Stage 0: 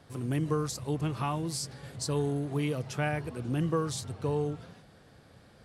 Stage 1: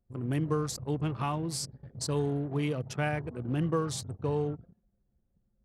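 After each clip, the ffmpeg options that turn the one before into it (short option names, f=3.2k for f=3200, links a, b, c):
-af "anlmdn=0.398"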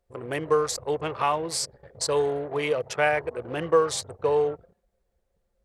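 -af "equalizer=f=125:t=o:w=1:g=-9,equalizer=f=250:t=o:w=1:g=-10,equalizer=f=500:t=o:w=1:g=12,equalizer=f=1k:t=o:w=1:g=5,equalizer=f=2k:t=o:w=1:g=8,equalizer=f=4k:t=o:w=1:g=4,equalizer=f=8k:t=o:w=1:g=5,volume=1.5dB"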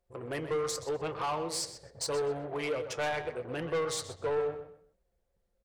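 -filter_complex "[0:a]flanger=delay=5.5:depth=3.5:regen=-67:speed=0.8:shape=sinusoidal,asoftclip=type=tanh:threshold=-27dB,asplit=2[a][b];[b]adelay=126,lowpass=f=5k:p=1,volume=-10dB,asplit=2[c][d];[d]adelay=126,lowpass=f=5k:p=1,volume=0.27,asplit=2[e][f];[f]adelay=126,lowpass=f=5k:p=1,volume=0.27[g];[c][e][g]amix=inputs=3:normalize=0[h];[a][h]amix=inputs=2:normalize=0"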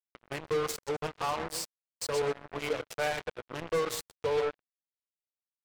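-af "acrusher=bits=4:mix=0:aa=0.5"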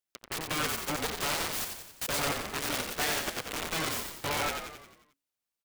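-filter_complex "[0:a]afftfilt=real='re*lt(hypot(re,im),0.158)':imag='im*lt(hypot(re,im),0.158)':win_size=1024:overlap=0.75,aeval=exprs='(mod(31.6*val(0)+1,2)-1)/31.6':c=same,asplit=8[a][b][c][d][e][f][g][h];[b]adelay=89,afreqshift=-40,volume=-5.5dB[i];[c]adelay=178,afreqshift=-80,volume=-10.9dB[j];[d]adelay=267,afreqshift=-120,volume=-16.2dB[k];[e]adelay=356,afreqshift=-160,volume=-21.6dB[l];[f]adelay=445,afreqshift=-200,volume=-26.9dB[m];[g]adelay=534,afreqshift=-240,volume=-32.3dB[n];[h]adelay=623,afreqshift=-280,volume=-37.6dB[o];[a][i][j][k][l][m][n][o]amix=inputs=8:normalize=0,volume=5.5dB"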